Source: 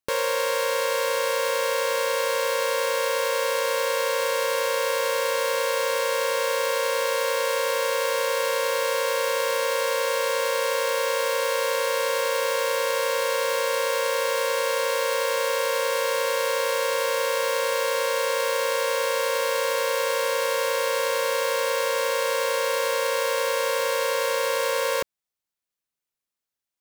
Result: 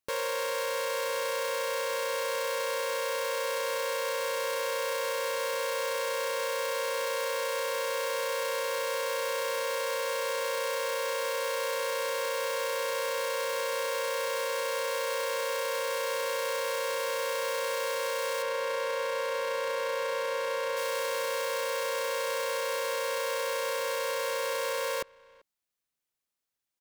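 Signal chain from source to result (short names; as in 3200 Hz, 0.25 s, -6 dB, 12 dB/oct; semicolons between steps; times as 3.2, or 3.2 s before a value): 18.42–20.77 high shelf 5100 Hz -11 dB; limiter -24 dBFS, peak gain reduction 9.5 dB; speakerphone echo 0.39 s, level -24 dB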